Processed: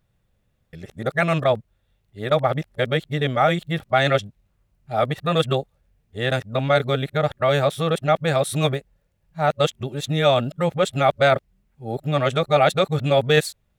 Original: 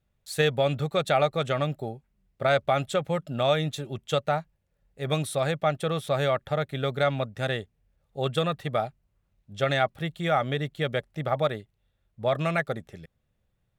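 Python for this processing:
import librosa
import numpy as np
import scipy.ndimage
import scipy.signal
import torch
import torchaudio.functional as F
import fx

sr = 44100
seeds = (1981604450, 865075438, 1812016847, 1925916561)

y = np.flip(x).copy()
y = F.gain(torch.from_numpy(y), 6.0).numpy()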